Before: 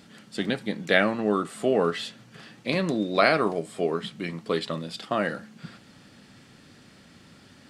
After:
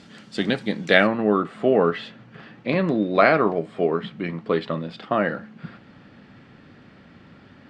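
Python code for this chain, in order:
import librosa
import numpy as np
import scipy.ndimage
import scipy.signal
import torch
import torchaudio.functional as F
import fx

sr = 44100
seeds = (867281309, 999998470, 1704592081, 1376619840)

y = fx.lowpass(x, sr, hz=fx.steps((0.0, 6500.0), (1.07, 2300.0)), slope=12)
y = y * 10.0 ** (4.5 / 20.0)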